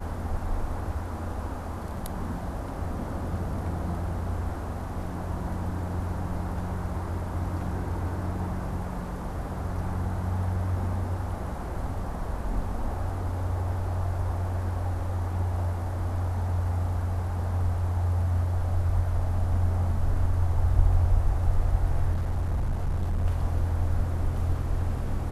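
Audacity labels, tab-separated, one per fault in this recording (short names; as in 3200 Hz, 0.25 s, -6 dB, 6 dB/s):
22.140000	23.260000	clipped -23 dBFS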